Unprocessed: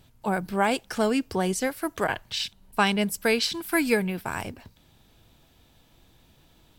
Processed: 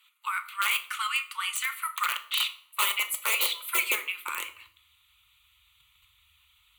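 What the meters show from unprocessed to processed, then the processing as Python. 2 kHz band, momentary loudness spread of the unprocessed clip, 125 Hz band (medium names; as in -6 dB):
+0.5 dB, 7 LU, under -35 dB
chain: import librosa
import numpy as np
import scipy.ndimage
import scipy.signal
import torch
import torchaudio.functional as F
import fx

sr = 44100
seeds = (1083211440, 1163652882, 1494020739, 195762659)

p1 = scipy.signal.sosfilt(scipy.signal.cheby2(4, 60, [160.0, 520.0], 'bandstop', fs=sr, output='sos'), x)
p2 = fx.high_shelf(p1, sr, hz=9600.0, db=-6.5)
p3 = fx.hpss(p2, sr, part='percussive', gain_db=5)
p4 = fx.dynamic_eq(p3, sr, hz=260.0, q=1.4, threshold_db=-54.0, ratio=4.0, max_db=-4)
p5 = fx.level_steps(p4, sr, step_db=19)
p6 = p4 + (p5 * 10.0 ** (0.5 / 20.0))
p7 = (np.mod(10.0 ** (15.5 / 20.0) * p6 + 1.0, 2.0) - 1.0) / 10.0 ** (15.5 / 20.0)
p8 = fx.comb_fb(p7, sr, f0_hz=79.0, decay_s=0.58, harmonics='all', damping=0.0, mix_pct=40)
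p9 = fx.filter_sweep_highpass(p8, sr, from_hz=1200.0, to_hz=120.0, start_s=2.4, end_s=5.41, q=1.6)
p10 = fx.fixed_phaser(p9, sr, hz=1100.0, stages=8)
p11 = fx.cheby_harmonics(p10, sr, harmonics=(3,), levels_db=(-23,), full_scale_db=-14.0)
p12 = fx.room_shoebox(p11, sr, seeds[0], volume_m3=450.0, walls='furnished', distance_m=0.88)
y = p12 * 10.0 ** (5.5 / 20.0)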